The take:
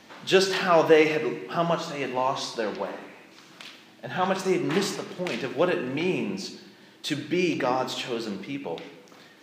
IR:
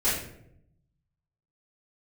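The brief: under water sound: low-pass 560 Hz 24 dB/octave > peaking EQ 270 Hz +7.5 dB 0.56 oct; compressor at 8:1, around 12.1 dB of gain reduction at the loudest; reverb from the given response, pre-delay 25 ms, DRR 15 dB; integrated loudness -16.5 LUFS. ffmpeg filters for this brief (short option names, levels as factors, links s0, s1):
-filter_complex "[0:a]acompressor=threshold=0.0501:ratio=8,asplit=2[s0][s1];[1:a]atrim=start_sample=2205,adelay=25[s2];[s1][s2]afir=irnorm=-1:irlink=0,volume=0.0447[s3];[s0][s3]amix=inputs=2:normalize=0,lowpass=f=560:w=0.5412,lowpass=f=560:w=1.3066,equalizer=f=270:t=o:w=0.56:g=7.5,volume=5.62"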